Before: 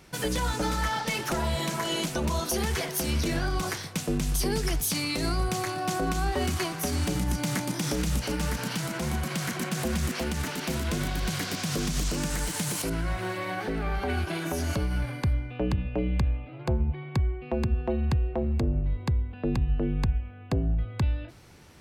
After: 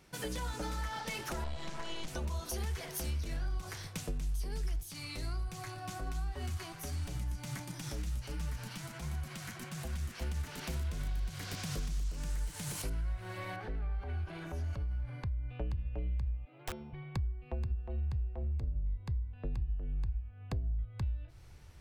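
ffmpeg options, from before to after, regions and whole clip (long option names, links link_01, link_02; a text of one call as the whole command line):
ffmpeg -i in.wav -filter_complex "[0:a]asettb=1/sr,asplit=3[link_01][link_02][link_03];[link_01]atrim=end=1.444[link_04];[link_02]atrim=start=1.44:end=2.08,asetpts=PTS-STARTPTS,afade=type=in:duration=0.004:curve=qsin,afade=type=out:start_time=0.636:duration=0.004:curve=qsin,aeval=exprs='clip(val(0),-1,0.0133)':channel_layout=same,lowpass=6100[link_05];[link_03]atrim=start=2.076[link_06];[link_04][link_05]acrossfade=duration=0.004:curve1=hsin:curve2=qsin[link_07];[link_07][link_06]acrossfade=duration=0.004:curve1=qsin:curve2=hsin,asettb=1/sr,asplit=3[link_08][link_09][link_10];[link_08]atrim=end=4.834[link_11];[link_09]atrim=start=4.83:end=10.22,asetpts=PTS-STARTPTS,afade=type=in:duration=0.004:curve=qsin,afade=type=out:start_time=5.386:duration=0.004:curve=qsin,equalizer=frequency=480:width=2.4:gain=-4,flanger=delay=5.8:depth=4.4:regen=47:speed=1.4:shape=triangular[link_12];[link_10]atrim=start=10.216[link_13];[link_11][link_12]acrossfade=duration=0.004:curve1=hsin:curve2=qsin[link_14];[link_14][link_13]acrossfade=duration=0.004:curve1=qsin:curve2=hsin,asettb=1/sr,asplit=3[link_15][link_16][link_17];[link_15]atrim=end=13.564[link_18];[link_16]atrim=start=13.56:end=15.49,asetpts=PTS-STARTPTS,afade=type=in:duration=0.004:curve=qsin,afade=type=out:start_time=1.926:duration=0.004:curve=qsin,lowpass=frequency=2300:poles=1,acompressor=threshold=-30dB:ratio=3:attack=3.2:release=140:knee=1:detection=peak[link_19];[link_17]atrim=start=15.486[link_20];[link_18][link_19]acrossfade=duration=0.004:curve1=hsin:curve2=qsin[link_21];[link_21][link_20]acrossfade=duration=0.004:curve1=qsin:curve2=hsin,asettb=1/sr,asplit=3[link_22][link_23][link_24];[link_22]atrim=end=16.454[link_25];[link_23]atrim=start=16.45:end=16.93,asetpts=PTS-STARTPTS,afade=type=in:duration=0.004:curve=qsin,afade=type=out:start_time=0.476:duration=0.004:curve=qsin,highpass=frequency=190:width=0.5412,highpass=frequency=190:width=1.3066,aeval=exprs='(mod(15*val(0)+1,2)-1)/15':channel_layout=same[link_26];[link_24]atrim=start=16.926[link_27];[link_25][link_26]acrossfade=duration=0.004:curve1=hsin:curve2=qsin[link_28];[link_28][link_27]acrossfade=duration=0.004:curve1=qsin:curve2=hsin,bandreject=frequency=342.9:width_type=h:width=4,bandreject=frequency=685.8:width_type=h:width=4,bandreject=frequency=1028.7:width_type=h:width=4,bandreject=frequency=1371.6:width_type=h:width=4,bandreject=frequency=1714.5:width_type=h:width=4,bandreject=frequency=2057.4:width_type=h:width=4,bandreject=frequency=2400.3:width_type=h:width=4,bandreject=frequency=2743.2:width_type=h:width=4,bandreject=frequency=3086.1:width_type=h:width=4,bandreject=frequency=3429:width_type=h:width=4,bandreject=frequency=3771.9:width_type=h:width=4,bandreject=frequency=4114.8:width_type=h:width=4,bandreject=frequency=4457.7:width_type=h:width=4,bandreject=frequency=4800.6:width_type=h:width=4,bandreject=frequency=5143.5:width_type=h:width=4,bandreject=frequency=5486.4:width_type=h:width=4,asubboost=boost=7.5:cutoff=80,acompressor=threshold=-25dB:ratio=5,volume=-8.5dB" out.wav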